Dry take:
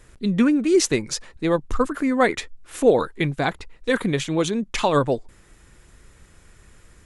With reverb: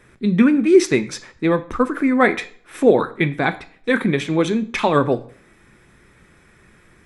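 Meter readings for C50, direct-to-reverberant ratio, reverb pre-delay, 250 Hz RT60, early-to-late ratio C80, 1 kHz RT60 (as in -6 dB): 17.5 dB, 10.0 dB, 3 ms, 0.60 s, 20.0 dB, 0.50 s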